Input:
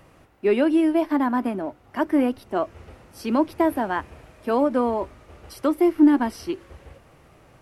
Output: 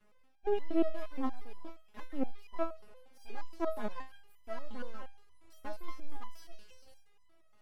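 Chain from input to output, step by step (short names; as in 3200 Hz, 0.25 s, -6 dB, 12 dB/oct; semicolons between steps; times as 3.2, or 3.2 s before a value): 2.46–3.93 bell 580 Hz +7 dB 1.3 oct; limiter -13 dBFS, peak gain reduction 8.5 dB; delay with a stepping band-pass 0.191 s, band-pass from 3400 Hz, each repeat 0.7 oct, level -0.5 dB; half-wave rectifier; stepped resonator 8.5 Hz 210–1000 Hz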